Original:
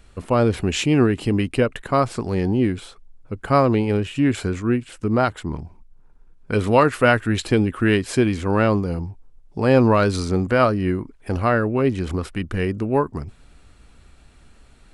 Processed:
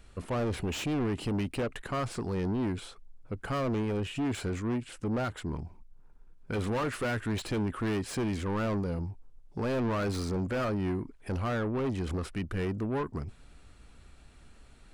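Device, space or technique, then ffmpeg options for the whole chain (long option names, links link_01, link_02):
saturation between pre-emphasis and de-emphasis: -af "highshelf=frequency=2800:gain=11.5,asoftclip=type=tanh:threshold=-22.5dB,highshelf=frequency=2800:gain=-11.5,volume=-4.5dB"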